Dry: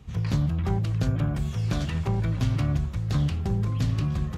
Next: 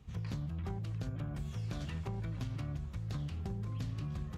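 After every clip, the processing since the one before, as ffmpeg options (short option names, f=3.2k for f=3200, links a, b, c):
-af "acompressor=threshold=-26dB:ratio=6,volume=-9dB"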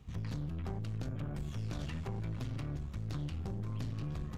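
-af "aeval=exprs='(tanh(70.8*val(0)+0.55)-tanh(0.55))/70.8':c=same,volume=4dB"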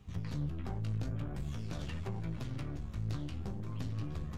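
-af "flanger=delay=9.7:depth=9.6:regen=37:speed=0.5:shape=triangular,volume=4dB"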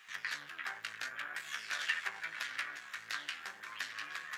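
-af "highpass=f=1.7k:t=q:w=4,volume=9.5dB"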